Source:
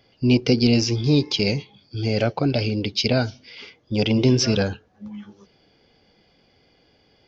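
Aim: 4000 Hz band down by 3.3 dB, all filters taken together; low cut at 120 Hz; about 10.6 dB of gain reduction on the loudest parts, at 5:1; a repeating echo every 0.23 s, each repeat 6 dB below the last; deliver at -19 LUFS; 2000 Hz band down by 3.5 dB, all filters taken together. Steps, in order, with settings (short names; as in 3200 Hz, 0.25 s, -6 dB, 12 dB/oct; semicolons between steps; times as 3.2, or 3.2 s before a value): HPF 120 Hz; bell 2000 Hz -3.5 dB; bell 4000 Hz -3.5 dB; compressor 5:1, threshold -25 dBFS; feedback echo 0.23 s, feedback 50%, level -6 dB; gain +10 dB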